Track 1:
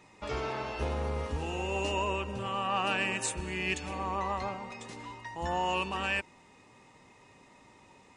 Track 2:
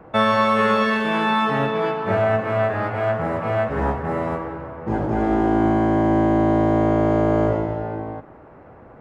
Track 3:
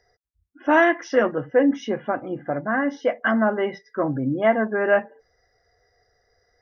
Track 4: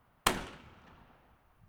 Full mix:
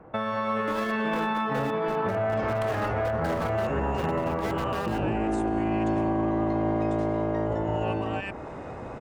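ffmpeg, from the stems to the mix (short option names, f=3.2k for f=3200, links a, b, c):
-filter_complex "[0:a]alimiter=level_in=5.5dB:limit=-24dB:level=0:latency=1:release=184,volume=-5.5dB,adelay=2100,volume=-2dB[a];[1:a]acompressor=threshold=-20dB:ratio=6,volume=-4.5dB[b];[2:a]acompressor=threshold=-25dB:ratio=4,acrusher=bits=3:mix=0:aa=0.000001,volume=-13dB[c];[3:a]adelay=2350,volume=-10dB[d];[a][b][c][d]amix=inputs=4:normalize=0,highshelf=f=3.7k:g=-10.5,dynaudnorm=f=140:g=11:m=11.5dB,alimiter=limit=-19dB:level=0:latency=1:release=161"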